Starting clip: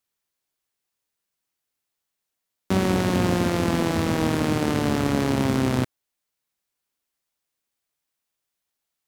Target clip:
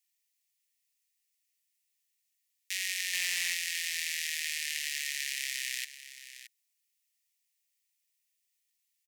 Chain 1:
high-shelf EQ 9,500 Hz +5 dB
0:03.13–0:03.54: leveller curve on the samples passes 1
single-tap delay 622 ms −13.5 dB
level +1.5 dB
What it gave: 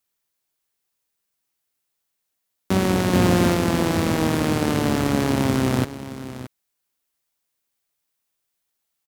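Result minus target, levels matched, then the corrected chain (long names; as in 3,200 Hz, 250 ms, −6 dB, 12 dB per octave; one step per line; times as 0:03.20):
2,000 Hz band −7.5 dB
Chebyshev high-pass with heavy ripple 1,800 Hz, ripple 3 dB
high-shelf EQ 9,500 Hz +5 dB
0:03.13–0:03.54: leveller curve on the samples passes 1
single-tap delay 622 ms −13.5 dB
level +1.5 dB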